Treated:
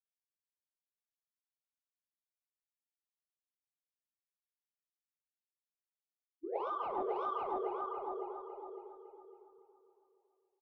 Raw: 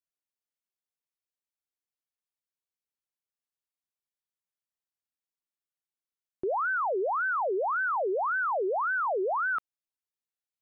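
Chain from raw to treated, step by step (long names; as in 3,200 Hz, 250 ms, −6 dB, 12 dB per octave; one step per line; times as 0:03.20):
fade-out on the ending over 3.31 s
downward expander −24 dBFS
feedback echo with a low-pass in the loop 229 ms, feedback 61%, level −22.5 dB
reverb whose tail is shaped and stops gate 180 ms rising, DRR 8.5 dB
in parallel at −6 dB: soft clipping −34 dBFS, distortion −13 dB
on the sum: hollow resonant body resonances 220/330/820 Hz, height 9 dB, ringing for 85 ms
formants moved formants −4 semitones
low-pass that shuts in the quiet parts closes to 340 Hz, open at −24 dBFS
repeating echo 279 ms, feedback 57%, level −10.5 dB
level −6.5 dB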